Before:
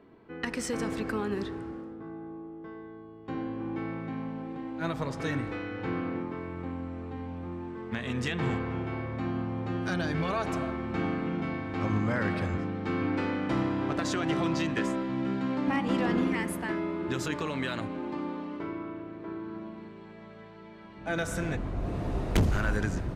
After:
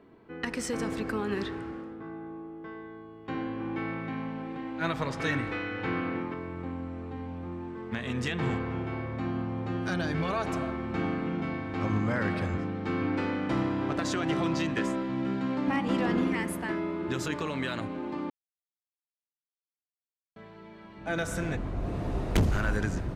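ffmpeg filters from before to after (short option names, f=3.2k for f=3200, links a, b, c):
-filter_complex "[0:a]asettb=1/sr,asplit=3[a][b][c];[a]atrim=end=1.284[d];[b]atrim=start=1.28:end=6.34,asetpts=PTS-STARTPTS,afade=t=in:d=0.004:c=qsin,afade=t=out:st=5.056:d=0.004:c=qsin,equalizer=f=2.3k:w=0.56:g=6.5[e];[c]atrim=start=6.336[f];[d][e]acrossfade=d=0.004:c1=hsin:c2=qsin[g];[g][f]acrossfade=d=0.004:c1=qsin:c2=hsin,asplit=3[h][i][j];[h]atrim=end=18.3,asetpts=PTS-STARTPTS,afade=t=out:st=18.296:d=0.004:c=hsin[k];[i]atrim=start=18.3:end=20.36,asetpts=PTS-STARTPTS,volume=0[l];[j]atrim=start=20.36,asetpts=PTS-STARTPTS,afade=t=in:d=0.004:c=hsin[m];[k][l][m]concat=n=3:v=0:a=1"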